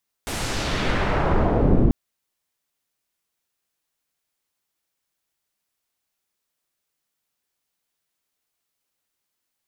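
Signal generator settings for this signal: swept filtered noise pink, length 1.64 s lowpass, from 12000 Hz, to 280 Hz, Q 0.94, exponential, gain ramp +16 dB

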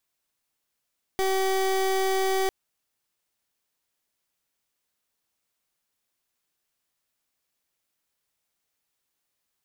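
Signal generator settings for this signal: pulse 382 Hz, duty 28% -24 dBFS 1.30 s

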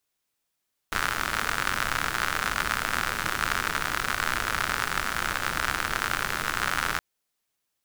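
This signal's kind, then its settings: rain from filtered ticks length 6.07 s, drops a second 89, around 1400 Hz, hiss -6.5 dB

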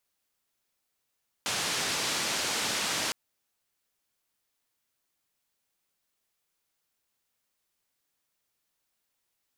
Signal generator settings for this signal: noise band 120–6500 Hz, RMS -30.5 dBFS 1.66 s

